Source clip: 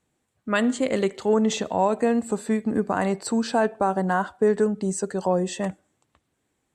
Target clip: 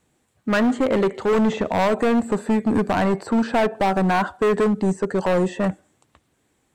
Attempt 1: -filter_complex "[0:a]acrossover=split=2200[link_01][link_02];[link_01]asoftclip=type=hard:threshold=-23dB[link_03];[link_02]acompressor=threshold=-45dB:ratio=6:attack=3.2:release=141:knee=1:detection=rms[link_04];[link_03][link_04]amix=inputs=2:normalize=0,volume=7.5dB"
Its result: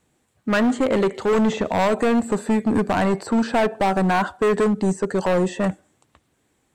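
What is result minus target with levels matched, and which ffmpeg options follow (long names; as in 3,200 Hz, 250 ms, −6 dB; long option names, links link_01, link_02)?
downward compressor: peak gain reduction −5 dB
-filter_complex "[0:a]acrossover=split=2200[link_01][link_02];[link_01]asoftclip=type=hard:threshold=-23dB[link_03];[link_02]acompressor=threshold=-51dB:ratio=6:attack=3.2:release=141:knee=1:detection=rms[link_04];[link_03][link_04]amix=inputs=2:normalize=0,volume=7.5dB"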